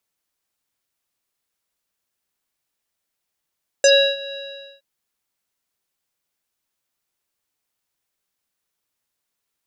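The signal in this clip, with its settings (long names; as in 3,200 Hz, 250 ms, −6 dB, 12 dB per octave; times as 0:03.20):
subtractive voice square C#5 24 dB per octave, low-pass 3,900 Hz, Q 6.1, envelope 1 octave, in 0.08 s, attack 2.4 ms, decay 0.32 s, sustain −21 dB, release 0.48 s, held 0.49 s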